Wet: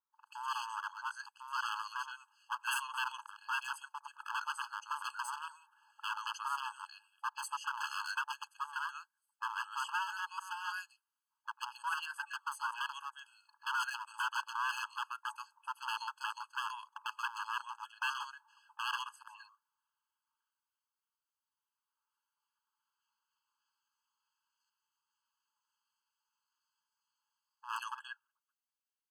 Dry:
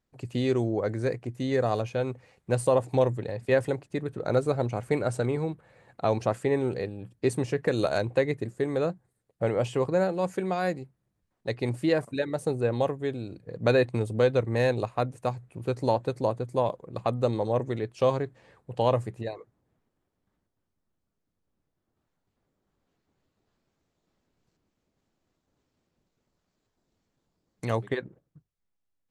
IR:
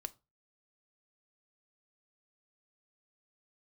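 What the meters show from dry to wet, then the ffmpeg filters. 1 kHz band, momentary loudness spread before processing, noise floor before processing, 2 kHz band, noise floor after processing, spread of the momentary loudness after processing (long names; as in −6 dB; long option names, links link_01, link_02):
−4.0 dB, 10 LU, −80 dBFS, −0.5 dB, below −85 dBFS, 12 LU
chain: -filter_complex "[0:a]acrossover=split=1300[link_01][link_02];[link_02]adelay=130[link_03];[link_01][link_03]amix=inputs=2:normalize=0,aeval=exprs='0.0531*(abs(mod(val(0)/0.0531+3,4)-2)-1)':channel_layout=same,afftfilt=real='re*eq(mod(floor(b*sr/1024/850),2),1)':imag='im*eq(mod(floor(b*sr/1024/850),2),1)':win_size=1024:overlap=0.75"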